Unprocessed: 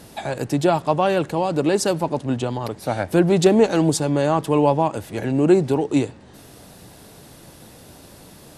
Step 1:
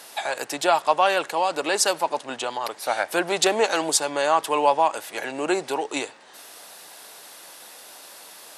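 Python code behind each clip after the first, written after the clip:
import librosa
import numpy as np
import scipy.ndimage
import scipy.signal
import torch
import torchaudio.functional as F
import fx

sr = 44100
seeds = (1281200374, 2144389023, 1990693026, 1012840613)

y = scipy.signal.sosfilt(scipy.signal.butter(2, 840.0, 'highpass', fs=sr, output='sos'), x)
y = y * 10.0 ** (5.0 / 20.0)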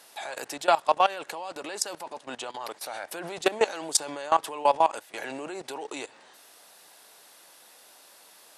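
y = fx.level_steps(x, sr, step_db=18)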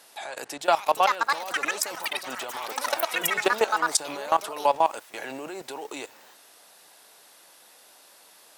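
y = fx.echo_pitch(x, sr, ms=618, semitones=7, count=3, db_per_echo=-3.0)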